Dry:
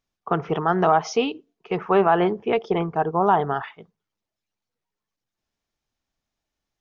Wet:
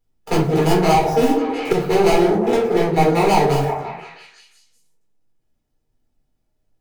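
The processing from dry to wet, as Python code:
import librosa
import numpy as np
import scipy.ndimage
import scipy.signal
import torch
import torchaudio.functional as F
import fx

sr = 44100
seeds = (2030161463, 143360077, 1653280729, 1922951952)

p1 = scipy.signal.medfilt(x, 41)
p2 = fx.over_compress(p1, sr, threshold_db=-25.0, ratio=-0.5)
p3 = p1 + F.gain(torch.from_numpy(p2), 2.5).numpy()
p4 = fx.high_shelf(p3, sr, hz=4200.0, db=11.0)
p5 = p4 + fx.echo_stepped(p4, sr, ms=175, hz=470.0, octaves=0.7, feedback_pct=70, wet_db=-5.0, dry=0)
p6 = fx.room_shoebox(p5, sr, seeds[0], volume_m3=260.0, walls='furnished', distance_m=4.1)
p7 = fx.band_squash(p6, sr, depth_pct=100, at=(0.94, 1.73))
y = F.gain(torch.from_numpy(p7), -7.0).numpy()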